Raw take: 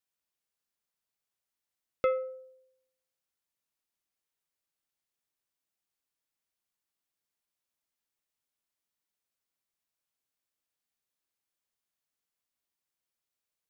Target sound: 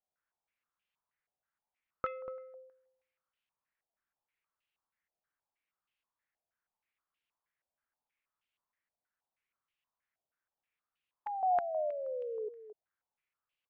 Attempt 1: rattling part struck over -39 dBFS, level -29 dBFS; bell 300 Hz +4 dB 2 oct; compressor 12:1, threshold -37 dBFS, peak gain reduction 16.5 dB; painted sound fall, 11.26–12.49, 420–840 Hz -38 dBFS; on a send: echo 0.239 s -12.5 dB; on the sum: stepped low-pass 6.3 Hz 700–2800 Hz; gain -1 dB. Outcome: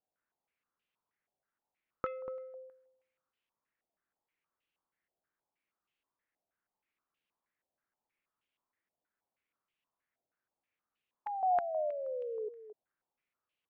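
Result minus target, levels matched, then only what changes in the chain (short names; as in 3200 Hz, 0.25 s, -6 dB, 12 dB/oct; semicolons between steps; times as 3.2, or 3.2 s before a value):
250 Hz band +3.5 dB
change: bell 300 Hz -5 dB 2 oct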